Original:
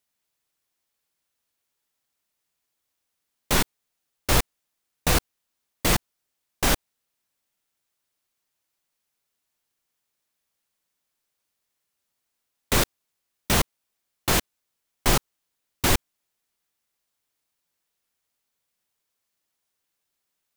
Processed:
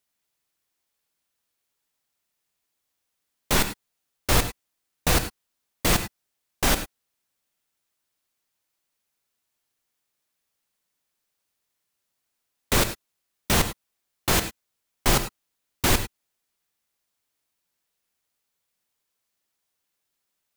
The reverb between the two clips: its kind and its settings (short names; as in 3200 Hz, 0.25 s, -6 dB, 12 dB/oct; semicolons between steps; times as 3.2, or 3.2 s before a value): non-linear reverb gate 0.12 s rising, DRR 10 dB